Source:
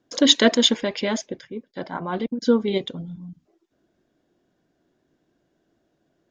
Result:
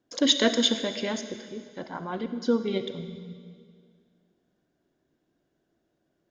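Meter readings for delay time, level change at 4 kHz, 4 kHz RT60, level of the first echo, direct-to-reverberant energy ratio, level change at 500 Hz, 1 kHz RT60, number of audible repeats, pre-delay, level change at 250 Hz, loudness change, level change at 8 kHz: no echo audible, −5.5 dB, 2.0 s, no echo audible, 9.5 dB, −5.5 dB, 2.0 s, no echo audible, 35 ms, −5.5 dB, −5.5 dB, −5.5 dB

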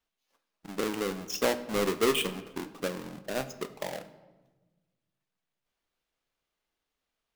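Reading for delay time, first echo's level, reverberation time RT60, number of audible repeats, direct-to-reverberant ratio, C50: no echo audible, no echo audible, 1.3 s, no echo audible, 11.0 dB, 14.0 dB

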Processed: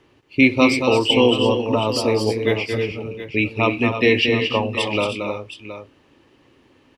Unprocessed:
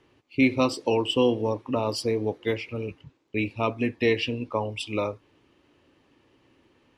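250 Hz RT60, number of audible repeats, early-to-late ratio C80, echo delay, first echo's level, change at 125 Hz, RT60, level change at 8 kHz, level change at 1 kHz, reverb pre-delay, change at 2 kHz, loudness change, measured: no reverb audible, 3, no reverb audible, 227 ms, −6.5 dB, +7.0 dB, no reverb audible, +7.5 dB, +7.5 dB, no reverb audible, +11.0 dB, +8.0 dB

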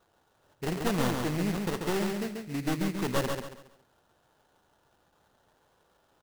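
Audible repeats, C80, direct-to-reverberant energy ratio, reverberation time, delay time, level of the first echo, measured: 4, no reverb audible, no reverb audible, no reverb audible, 138 ms, −4.5 dB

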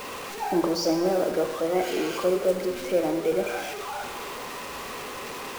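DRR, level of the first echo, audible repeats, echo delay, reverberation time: 4.5 dB, no echo audible, no echo audible, no echo audible, 1.2 s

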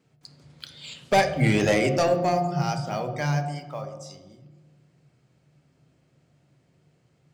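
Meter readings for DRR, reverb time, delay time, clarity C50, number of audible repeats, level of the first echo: 5.0 dB, 1.2 s, no echo audible, 8.5 dB, no echo audible, no echo audible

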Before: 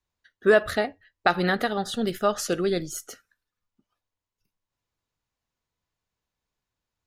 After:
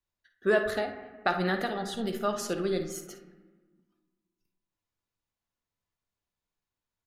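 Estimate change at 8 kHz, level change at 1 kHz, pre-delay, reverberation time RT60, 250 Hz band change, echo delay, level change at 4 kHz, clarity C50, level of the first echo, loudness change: −6.0 dB, −5.0 dB, 3 ms, 1.3 s, −4.5 dB, 54 ms, −6.0 dB, 7.0 dB, −12.0 dB, −5.5 dB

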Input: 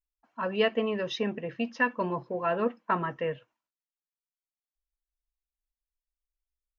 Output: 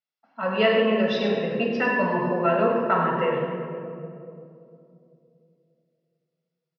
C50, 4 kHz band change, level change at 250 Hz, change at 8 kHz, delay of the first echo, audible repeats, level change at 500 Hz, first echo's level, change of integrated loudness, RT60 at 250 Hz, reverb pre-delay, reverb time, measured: 1.0 dB, +6.0 dB, +7.5 dB, can't be measured, 100 ms, 1, +8.0 dB, −7.5 dB, +7.0 dB, 3.4 s, 18 ms, 2.7 s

